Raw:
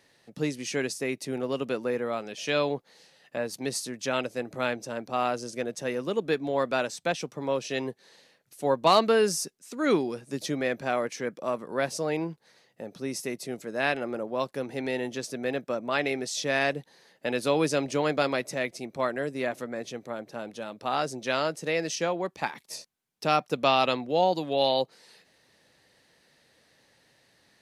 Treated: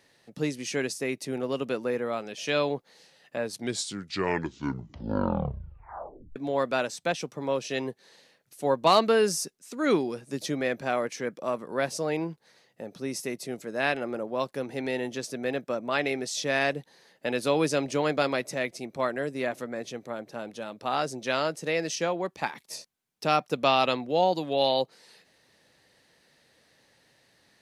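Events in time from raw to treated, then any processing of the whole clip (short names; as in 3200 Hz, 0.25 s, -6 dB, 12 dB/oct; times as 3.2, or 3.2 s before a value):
3.37 tape stop 2.99 s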